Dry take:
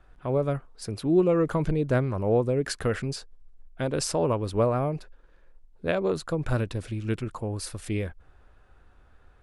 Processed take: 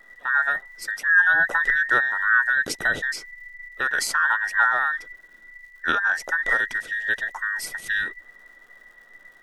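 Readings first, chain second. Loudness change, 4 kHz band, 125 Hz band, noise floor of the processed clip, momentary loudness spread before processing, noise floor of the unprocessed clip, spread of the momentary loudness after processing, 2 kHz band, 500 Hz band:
+6.0 dB, +5.0 dB, under -20 dB, -52 dBFS, 10 LU, -56 dBFS, 11 LU, +22.5 dB, -13.5 dB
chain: every band turned upside down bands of 2 kHz; crackle 280 per s -54 dBFS; trim +3.5 dB

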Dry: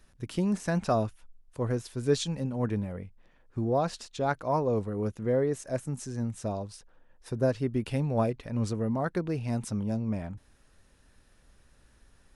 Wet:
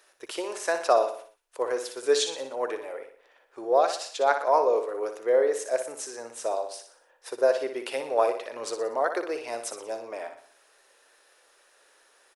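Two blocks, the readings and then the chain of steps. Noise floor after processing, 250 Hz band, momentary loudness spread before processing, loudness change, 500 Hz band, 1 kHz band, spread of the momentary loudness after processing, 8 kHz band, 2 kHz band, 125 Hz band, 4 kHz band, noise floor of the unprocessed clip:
-62 dBFS, -11.0 dB, 9 LU, +3.5 dB, +6.0 dB, +7.0 dB, 15 LU, +7.0 dB, +7.0 dB, under -30 dB, +7.0 dB, -62 dBFS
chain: inverse Chebyshev high-pass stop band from 210 Hz, stop band 40 dB; on a send: feedback delay 60 ms, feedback 47%, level -8.5 dB; on the sum: trim +6.5 dB

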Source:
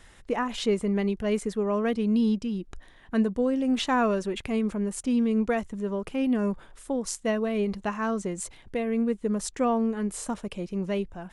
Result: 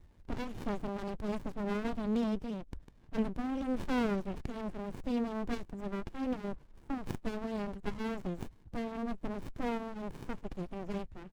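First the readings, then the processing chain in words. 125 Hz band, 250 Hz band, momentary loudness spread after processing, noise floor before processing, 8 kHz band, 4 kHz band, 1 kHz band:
-7.0 dB, -10.0 dB, 10 LU, -54 dBFS, under -20 dB, -12.5 dB, -9.5 dB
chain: coarse spectral quantiser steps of 30 dB; resampled via 22.05 kHz; sliding maximum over 65 samples; trim -4 dB

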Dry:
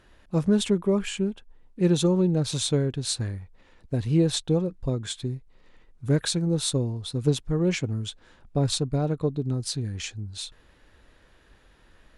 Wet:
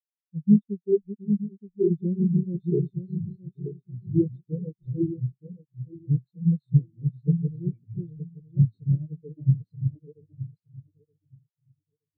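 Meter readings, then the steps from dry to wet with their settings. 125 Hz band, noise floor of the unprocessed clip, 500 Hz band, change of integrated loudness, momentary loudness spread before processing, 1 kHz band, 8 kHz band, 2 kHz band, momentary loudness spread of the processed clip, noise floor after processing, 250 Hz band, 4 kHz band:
+1.5 dB, -58 dBFS, -3.5 dB, -0.5 dB, 12 LU, under -40 dB, under -40 dB, under -40 dB, 17 LU, under -85 dBFS, 0.0 dB, under -40 dB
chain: backward echo that repeats 461 ms, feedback 77%, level -1 dB; spectral contrast expander 4:1

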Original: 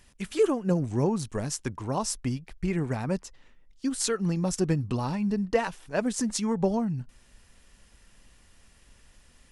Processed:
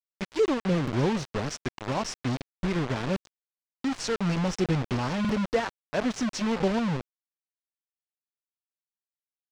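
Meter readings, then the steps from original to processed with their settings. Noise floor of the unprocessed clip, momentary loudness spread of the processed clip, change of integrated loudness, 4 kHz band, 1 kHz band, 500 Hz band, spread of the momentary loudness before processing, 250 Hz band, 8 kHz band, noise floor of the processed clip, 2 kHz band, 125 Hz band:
-59 dBFS, 7 LU, 0.0 dB, +2.5 dB, +1.5 dB, -0.5 dB, 7 LU, 0.0 dB, -7.0 dB, under -85 dBFS, +4.0 dB, 0.0 dB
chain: peaking EQ 5.6 kHz +6.5 dB 0.37 oct; bit crusher 5-bit; hard clipper -16 dBFS, distortion -24 dB; distance through air 130 m; buffer glitch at 0.83/2.36/5.20 s, samples 2048, times 1

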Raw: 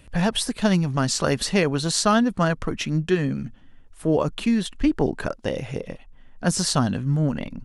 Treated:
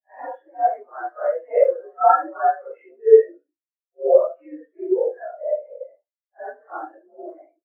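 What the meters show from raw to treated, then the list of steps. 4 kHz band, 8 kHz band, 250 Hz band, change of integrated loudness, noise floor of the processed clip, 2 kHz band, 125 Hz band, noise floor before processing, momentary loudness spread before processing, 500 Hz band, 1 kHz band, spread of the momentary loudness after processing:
under -40 dB, under -40 dB, -15.5 dB, +3.0 dB, under -85 dBFS, -8.5 dB, under -40 dB, -48 dBFS, 9 LU, +7.5 dB, +7.0 dB, 24 LU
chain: phase randomisation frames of 200 ms; mistuned SSB +76 Hz 370–2200 Hz; in parallel at 0 dB: compression, threshold -38 dBFS, peak gain reduction 19.5 dB; on the sum: modulation noise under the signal 11 dB; on a send: feedback delay 72 ms, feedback 34%, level -12 dB; on the sum: spectral contrast expander 2.5:1; trim +6 dB

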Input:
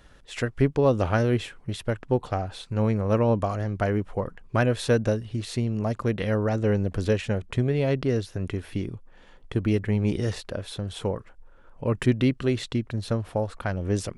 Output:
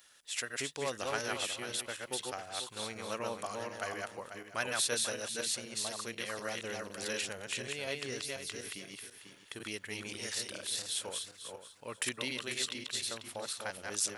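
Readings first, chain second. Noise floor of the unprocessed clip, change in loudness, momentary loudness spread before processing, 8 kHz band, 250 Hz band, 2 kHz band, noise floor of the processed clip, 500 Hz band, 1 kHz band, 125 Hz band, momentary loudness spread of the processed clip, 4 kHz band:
-52 dBFS, -10.5 dB, 10 LU, +8.5 dB, -20.5 dB, -3.5 dB, -58 dBFS, -14.5 dB, -9.0 dB, -27.0 dB, 9 LU, +3.0 dB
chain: backward echo that repeats 246 ms, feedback 42%, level -2 dB; differentiator; trim +6 dB

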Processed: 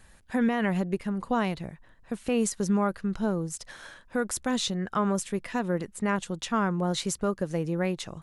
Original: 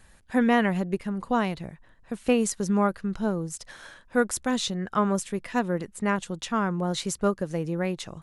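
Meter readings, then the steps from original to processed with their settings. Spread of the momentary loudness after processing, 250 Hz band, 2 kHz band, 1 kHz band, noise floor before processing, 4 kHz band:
8 LU, -1.5 dB, -3.0 dB, -3.0 dB, -56 dBFS, -0.5 dB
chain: peak limiter -16.5 dBFS, peak gain reduction 8 dB

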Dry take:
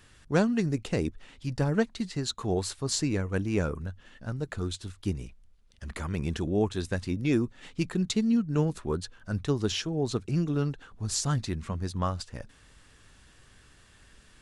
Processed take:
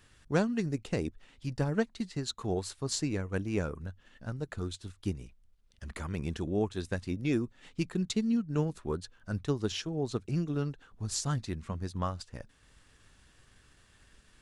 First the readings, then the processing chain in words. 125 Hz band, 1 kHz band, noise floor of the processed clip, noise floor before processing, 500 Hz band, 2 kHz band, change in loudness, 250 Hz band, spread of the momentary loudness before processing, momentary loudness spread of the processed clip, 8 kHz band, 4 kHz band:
-4.0 dB, -3.5 dB, -64 dBFS, -58 dBFS, -3.5 dB, -3.5 dB, -4.0 dB, -4.0 dB, 11 LU, 11 LU, -4.5 dB, -4.5 dB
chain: transient shaper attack +2 dB, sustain -3 dB; trim -4.5 dB

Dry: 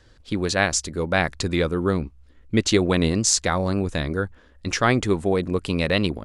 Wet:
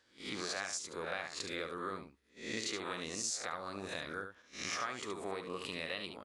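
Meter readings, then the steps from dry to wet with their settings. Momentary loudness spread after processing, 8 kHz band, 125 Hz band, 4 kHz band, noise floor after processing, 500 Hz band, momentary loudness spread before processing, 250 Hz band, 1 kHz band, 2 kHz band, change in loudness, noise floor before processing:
6 LU, -15.0 dB, -28.5 dB, -13.5 dB, -67 dBFS, -19.0 dB, 8 LU, -23.0 dB, -14.5 dB, -14.5 dB, -17.5 dB, -54 dBFS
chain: reverse spectral sustain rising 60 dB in 0.44 s; gate -42 dBFS, range -7 dB; high-pass 830 Hz 6 dB/octave; dynamic bell 1.2 kHz, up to +6 dB, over -45 dBFS, Q 6.7; compression 4:1, threshold -33 dBFS, peak gain reduction 16.5 dB; delay 72 ms -7.5 dB; trim -5.5 dB

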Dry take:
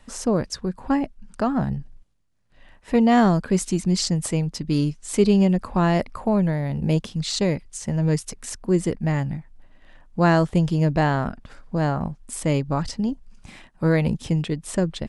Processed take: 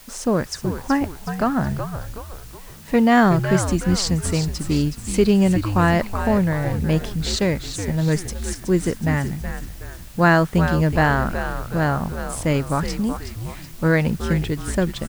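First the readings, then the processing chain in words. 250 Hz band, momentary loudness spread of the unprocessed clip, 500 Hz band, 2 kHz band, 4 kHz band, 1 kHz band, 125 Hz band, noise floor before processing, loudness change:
+1.5 dB, 11 LU, +2.0 dB, +7.5 dB, +2.5 dB, +3.5 dB, +2.0 dB, -54 dBFS, +2.0 dB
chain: word length cut 8-bit, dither triangular; dynamic bell 1.6 kHz, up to +7 dB, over -42 dBFS, Q 1.5; frequency-shifting echo 371 ms, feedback 46%, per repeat -98 Hz, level -8.5 dB; trim +1 dB

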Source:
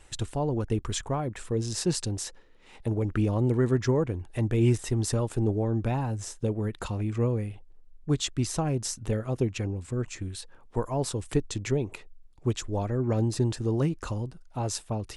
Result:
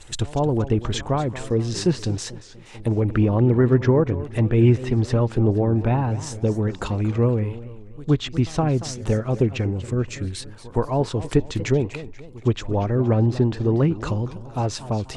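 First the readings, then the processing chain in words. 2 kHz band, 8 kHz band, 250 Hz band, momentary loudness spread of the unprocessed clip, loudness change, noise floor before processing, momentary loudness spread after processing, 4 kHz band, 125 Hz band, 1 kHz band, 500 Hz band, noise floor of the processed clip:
+6.5 dB, -1.5 dB, +7.0 dB, 9 LU, +7.0 dB, -53 dBFS, 11 LU, +3.5 dB, +7.0 dB, +7.0 dB, +7.0 dB, -41 dBFS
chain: pre-echo 118 ms -21.5 dB; low-pass that closes with the level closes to 2.7 kHz, closed at -23.5 dBFS; modulated delay 238 ms, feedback 40%, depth 215 cents, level -15 dB; trim +7 dB

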